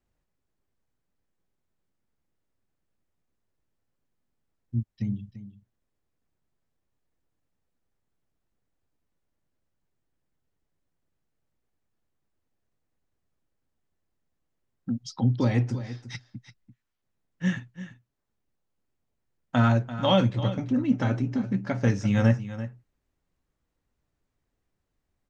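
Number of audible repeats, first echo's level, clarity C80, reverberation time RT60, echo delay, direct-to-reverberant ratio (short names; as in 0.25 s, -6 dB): 1, -13.5 dB, none, none, 0.34 s, none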